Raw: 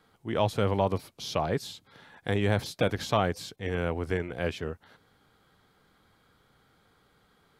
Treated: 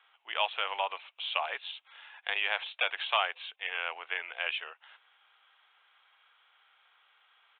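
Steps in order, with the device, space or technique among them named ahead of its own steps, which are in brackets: musical greeting card (resampled via 8 kHz; high-pass 800 Hz 24 dB/octave; peaking EQ 2.7 kHz +12 dB 0.55 oct)

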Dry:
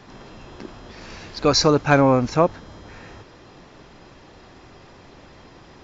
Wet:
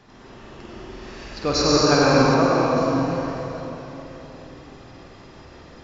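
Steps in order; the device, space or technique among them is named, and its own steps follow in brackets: tunnel (flutter echo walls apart 8.2 m, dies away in 0.41 s; reverberation RT60 3.8 s, pre-delay 81 ms, DRR -6 dB); 2.34–2.77 s: tone controls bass -4 dB, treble -4 dB; trim -6.5 dB

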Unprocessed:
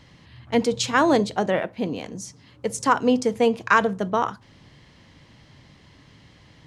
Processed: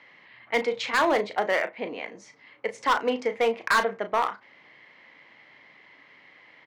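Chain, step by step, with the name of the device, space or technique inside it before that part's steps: megaphone (band-pass 500–2600 Hz; peaking EQ 2.1 kHz +11 dB 0.39 oct; hard clipper -16 dBFS, distortion -8 dB; doubling 35 ms -10 dB)

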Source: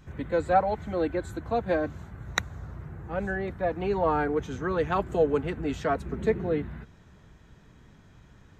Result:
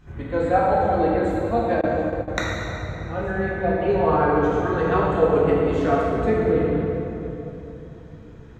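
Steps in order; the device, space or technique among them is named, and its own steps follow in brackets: swimming-pool hall (reverberation RT60 3.3 s, pre-delay 3 ms, DRR -6 dB; treble shelf 4.5 kHz -7 dB); 1.81–2.28 s: gate with hold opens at -13 dBFS

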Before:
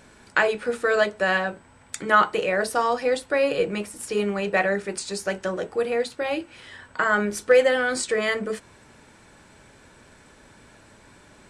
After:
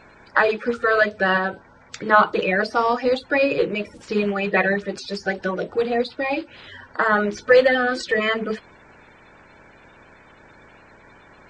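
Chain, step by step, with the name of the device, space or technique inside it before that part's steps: clip after many re-uploads (low-pass 5.2 kHz 24 dB/octave; coarse spectral quantiser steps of 30 dB); trim +3.5 dB

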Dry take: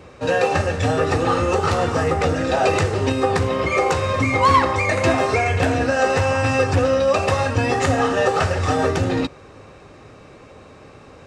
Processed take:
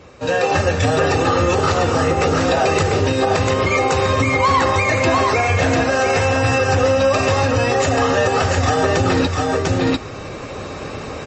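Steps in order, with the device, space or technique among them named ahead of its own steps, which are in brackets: treble shelf 5.5 kHz +5.5 dB; delay 696 ms -6 dB; low-bitrate web radio (level rider gain up to 14 dB; peak limiter -7 dBFS, peak gain reduction 6 dB; MP3 32 kbps 32 kHz)

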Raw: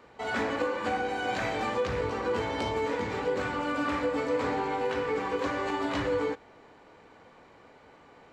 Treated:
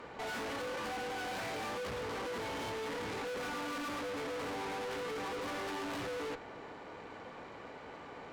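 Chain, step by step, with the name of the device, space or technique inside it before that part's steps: 3.22–3.88 s: comb 4.2 ms, depth 59%; tube preamp driven hard (valve stage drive 47 dB, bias 0.5; bass shelf 80 Hz -6 dB; treble shelf 5.7 kHz -5 dB); trim +9 dB

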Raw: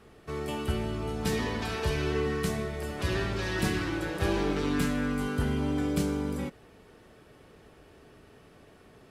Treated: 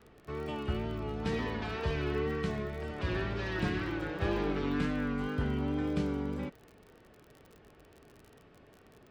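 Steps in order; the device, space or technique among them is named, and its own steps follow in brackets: lo-fi chain (low-pass 3.5 kHz 12 dB/octave; wow and flutter; crackle 36 per s -40 dBFS); 2.90–3.42 s: low-pass 12 kHz 12 dB/octave; trim -3.5 dB

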